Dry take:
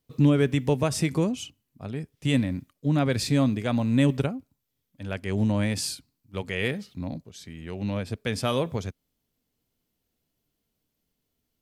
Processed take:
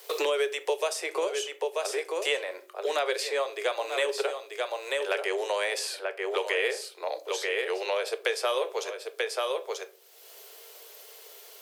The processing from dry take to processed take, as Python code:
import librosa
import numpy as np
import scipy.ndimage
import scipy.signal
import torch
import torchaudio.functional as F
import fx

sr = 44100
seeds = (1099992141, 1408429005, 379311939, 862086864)

y = scipy.signal.sosfilt(scipy.signal.butter(16, 380.0, 'highpass', fs=sr, output='sos'), x)
y = y + 10.0 ** (-10.5 / 20.0) * np.pad(y, (int(937 * sr / 1000.0), 0))[:len(y)]
y = fx.room_shoebox(y, sr, seeds[0], volume_m3=140.0, walls='furnished', distance_m=0.47)
y = fx.band_squash(y, sr, depth_pct=100)
y = y * 10.0 ** (2.0 / 20.0)